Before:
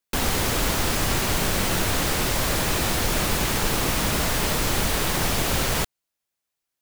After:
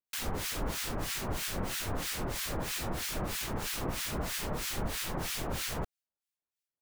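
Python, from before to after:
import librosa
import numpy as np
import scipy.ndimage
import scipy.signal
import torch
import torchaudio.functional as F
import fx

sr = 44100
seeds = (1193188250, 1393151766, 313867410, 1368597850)

y = fx.harmonic_tremolo(x, sr, hz=3.1, depth_pct=100, crossover_hz=1400.0)
y = F.gain(torch.from_numpy(y), -7.5).numpy()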